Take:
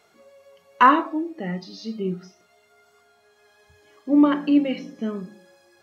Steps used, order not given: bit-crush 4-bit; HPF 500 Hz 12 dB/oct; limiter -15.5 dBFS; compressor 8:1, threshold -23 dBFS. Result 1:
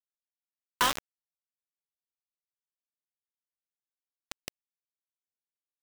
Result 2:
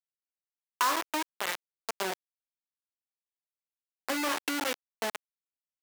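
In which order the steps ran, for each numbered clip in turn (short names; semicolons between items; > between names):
limiter > compressor > HPF > bit-crush; limiter > bit-crush > compressor > HPF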